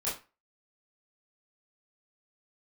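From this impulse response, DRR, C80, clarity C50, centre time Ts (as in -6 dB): -10.0 dB, 14.5 dB, 7.5 dB, 35 ms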